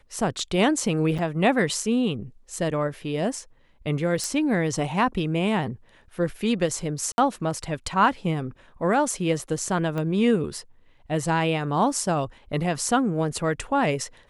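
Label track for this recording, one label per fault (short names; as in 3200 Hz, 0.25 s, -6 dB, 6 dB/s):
1.180000	1.190000	gap 6.3 ms
4.240000	4.240000	pop
7.120000	7.180000	gap 61 ms
9.980000	9.980000	pop -18 dBFS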